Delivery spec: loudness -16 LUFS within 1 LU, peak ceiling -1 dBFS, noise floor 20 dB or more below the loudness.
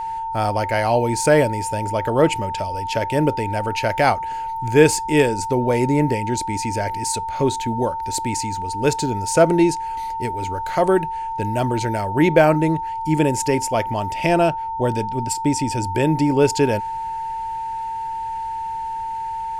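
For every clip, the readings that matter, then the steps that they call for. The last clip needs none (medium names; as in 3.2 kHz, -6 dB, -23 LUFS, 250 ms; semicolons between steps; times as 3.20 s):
steady tone 900 Hz; tone level -24 dBFS; loudness -20.5 LUFS; peak level -2.0 dBFS; loudness target -16.0 LUFS
-> band-stop 900 Hz, Q 30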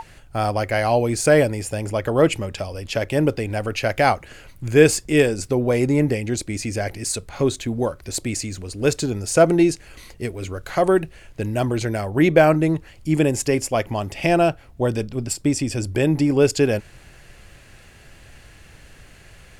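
steady tone not found; loudness -21.0 LUFS; peak level -1.5 dBFS; loudness target -16.0 LUFS
-> trim +5 dB; peak limiter -1 dBFS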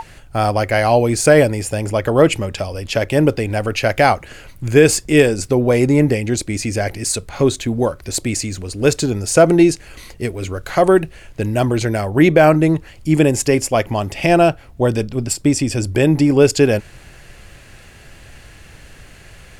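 loudness -16.0 LUFS; peak level -1.0 dBFS; noise floor -42 dBFS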